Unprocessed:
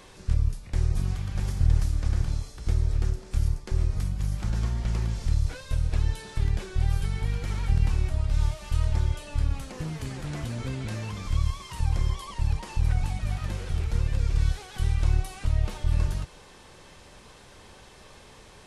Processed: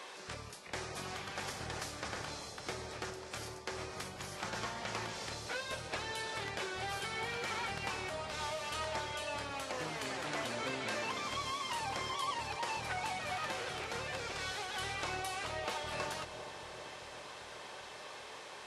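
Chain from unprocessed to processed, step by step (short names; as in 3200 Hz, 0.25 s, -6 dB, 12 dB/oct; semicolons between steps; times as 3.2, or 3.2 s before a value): HPF 550 Hz 12 dB/oct; high shelf 7800 Hz -11 dB; on a send: analogue delay 0.393 s, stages 2048, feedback 75%, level -10 dB; on the sum: gain +5 dB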